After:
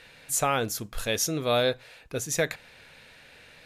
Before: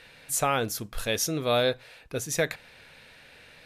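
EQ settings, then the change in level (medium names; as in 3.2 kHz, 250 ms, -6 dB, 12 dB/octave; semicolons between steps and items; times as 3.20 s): peaking EQ 6.9 kHz +3.5 dB 0.24 oct; 0.0 dB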